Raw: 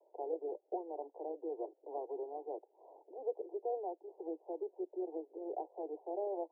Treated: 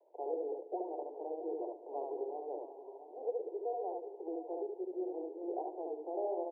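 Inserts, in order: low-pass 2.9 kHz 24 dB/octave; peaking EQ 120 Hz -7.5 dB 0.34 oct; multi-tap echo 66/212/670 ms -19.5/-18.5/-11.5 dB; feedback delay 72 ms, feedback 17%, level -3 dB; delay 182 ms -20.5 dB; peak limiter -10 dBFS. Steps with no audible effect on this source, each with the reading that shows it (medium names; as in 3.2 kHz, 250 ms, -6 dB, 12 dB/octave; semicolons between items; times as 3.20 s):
low-pass 2.9 kHz: input has nothing above 1 kHz; peaking EQ 120 Hz: input has nothing below 270 Hz; peak limiter -10 dBFS: peak at its input -25.5 dBFS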